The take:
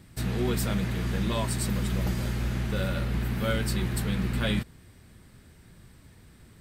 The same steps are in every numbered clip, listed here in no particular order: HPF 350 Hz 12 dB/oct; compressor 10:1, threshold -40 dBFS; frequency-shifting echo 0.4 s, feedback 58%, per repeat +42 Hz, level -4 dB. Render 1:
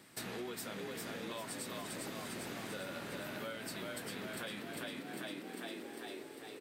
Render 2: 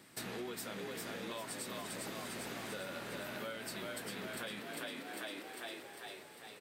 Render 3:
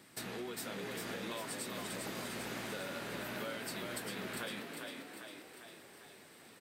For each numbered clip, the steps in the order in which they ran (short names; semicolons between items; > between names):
frequency-shifting echo > HPF > compressor; HPF > frequency-shifting echo > compressor; HPF > compressor > frequency-shifting echo